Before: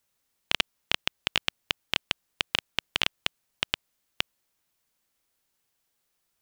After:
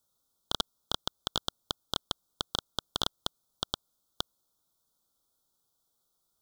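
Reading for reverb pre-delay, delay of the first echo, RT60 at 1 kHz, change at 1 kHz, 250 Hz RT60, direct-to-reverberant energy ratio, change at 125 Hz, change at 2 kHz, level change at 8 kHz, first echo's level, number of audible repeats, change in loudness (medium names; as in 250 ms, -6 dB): no reverb, no echo, no reverb, -0.5 dB, no reverb, no reverb, 0.0 dB, -18.0 dB, -0.5 dB, no echo, no echo, -5.5 dB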